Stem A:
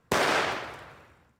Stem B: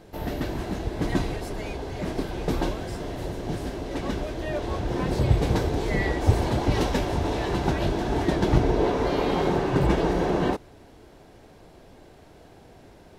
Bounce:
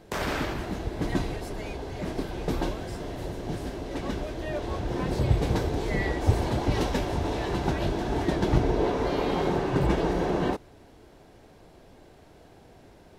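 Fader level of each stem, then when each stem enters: -7.0, -2.5 dB; 0.00, 0.00 s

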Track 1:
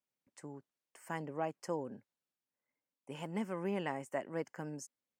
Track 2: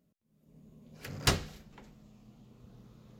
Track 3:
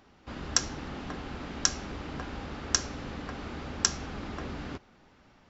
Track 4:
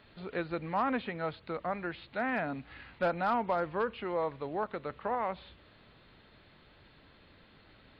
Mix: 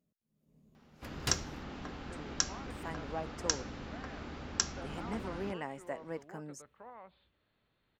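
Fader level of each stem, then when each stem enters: -2.5, -8.5, -5.5, -18.5 dB; 1.75, 0.00, 0.75, 1.75 s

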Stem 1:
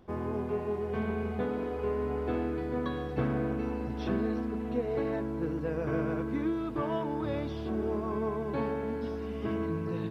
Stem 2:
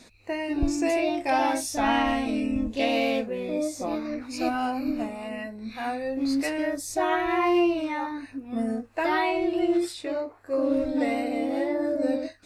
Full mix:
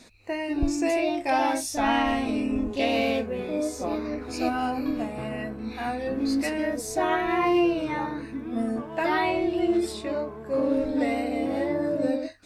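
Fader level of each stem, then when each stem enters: -6.5, 0.0 dB; 2.00, 0.00 s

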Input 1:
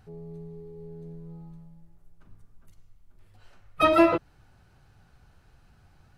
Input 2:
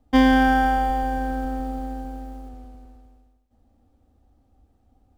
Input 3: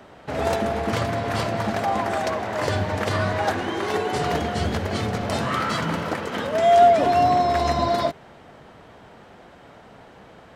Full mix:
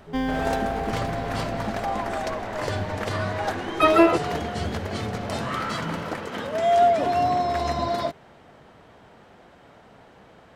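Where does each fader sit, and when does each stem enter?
+2.5, -10.5, -4.0 dB; 0.00, 0.00, 0.00 s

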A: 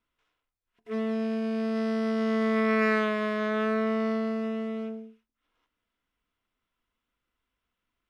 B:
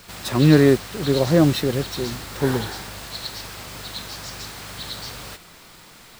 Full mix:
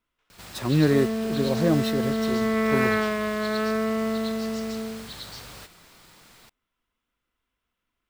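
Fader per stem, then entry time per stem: +1.5, -6.5 dB; 0.00, 0.30 s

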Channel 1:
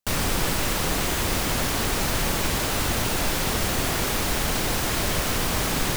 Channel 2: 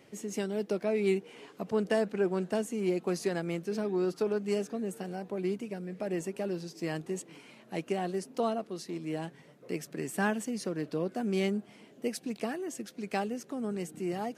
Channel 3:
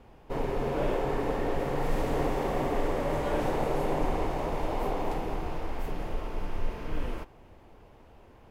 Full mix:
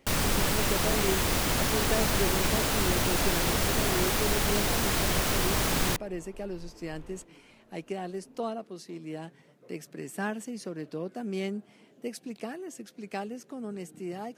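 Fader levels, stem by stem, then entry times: -2.5, -3.0, -16.5 dB; 0.00, 0.00, 0.00 s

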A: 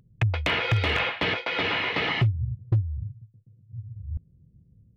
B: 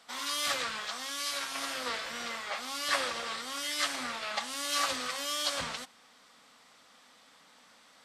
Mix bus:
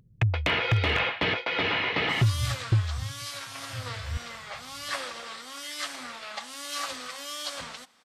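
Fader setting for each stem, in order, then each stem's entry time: -0.5, -3.0 dB; 0.00, 2.00 s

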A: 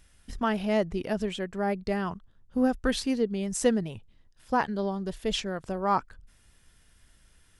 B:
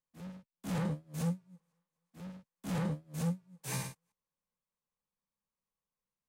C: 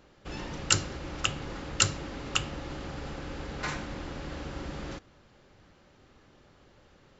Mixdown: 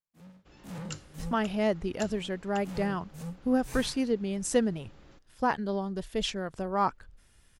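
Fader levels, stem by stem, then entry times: -1.5, -6.0, -18.0 dB; 0.90, 0.00, 0.20 s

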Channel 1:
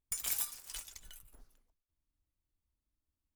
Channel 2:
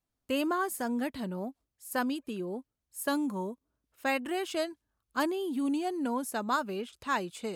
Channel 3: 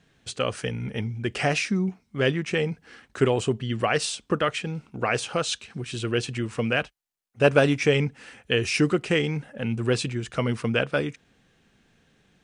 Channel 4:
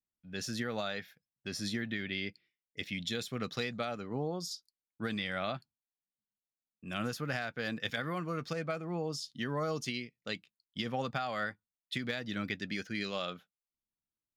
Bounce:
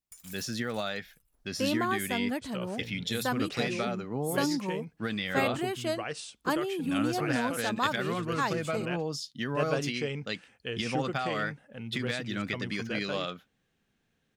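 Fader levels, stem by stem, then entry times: -13.0, 0.0, -13.0, +3.0 dB; 0.00, 1.30, 2.15, 0.00 s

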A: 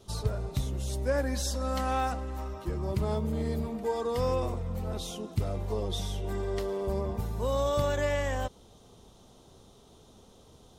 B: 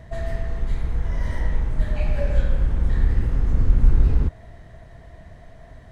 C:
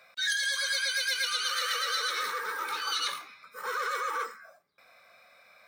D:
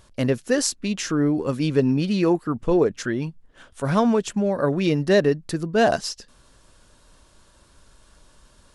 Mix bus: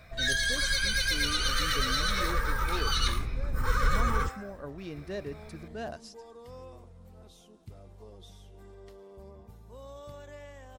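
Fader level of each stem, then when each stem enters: -18.0, -12.0, +0.5, -20.0 dB; 2.30, 0.00, 0.00, 0.00 s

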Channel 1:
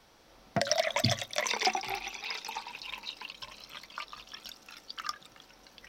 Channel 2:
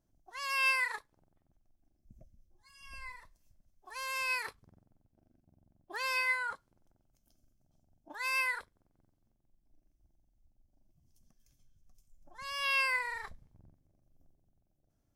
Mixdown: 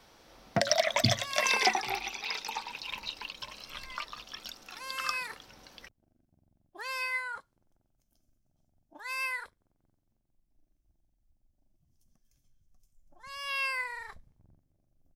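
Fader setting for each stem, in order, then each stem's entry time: +2.0, -2.0 dB; 0.00, 0.85 s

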